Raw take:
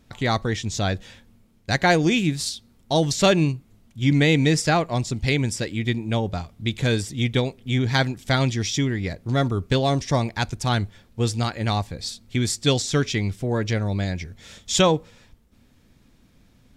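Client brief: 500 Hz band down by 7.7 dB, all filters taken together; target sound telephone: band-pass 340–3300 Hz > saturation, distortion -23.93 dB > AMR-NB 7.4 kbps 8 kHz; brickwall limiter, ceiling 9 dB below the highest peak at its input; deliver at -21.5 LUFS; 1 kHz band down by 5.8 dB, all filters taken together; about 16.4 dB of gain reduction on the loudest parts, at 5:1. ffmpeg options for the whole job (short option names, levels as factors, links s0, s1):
-af "equalizer=f=500:t=o:g=-7,equalizer=f=1000:t=o:g=-5,acompressor=threshold=0.0178:ratio=5,alimiter=level_in=1.88:limit=0.0631:level=0:latency=1,volume=0.531,highpass=340,lowpass=3300,asoftclip=threshold=0.0266,volume=23.7" -ar 8000 -c:a libopencore_amrnb -b:a 7400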